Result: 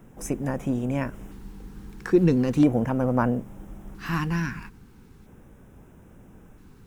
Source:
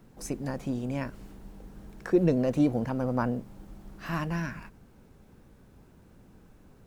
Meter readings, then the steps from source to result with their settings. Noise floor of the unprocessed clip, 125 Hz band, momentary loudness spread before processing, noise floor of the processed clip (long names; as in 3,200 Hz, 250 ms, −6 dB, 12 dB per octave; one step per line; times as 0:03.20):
−57 dBFS, +5.5 dB, 24 LU, −52 dBFS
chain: auto-filter notch square 0.38 Hz 610–4,400 Hz
level +5.5 dB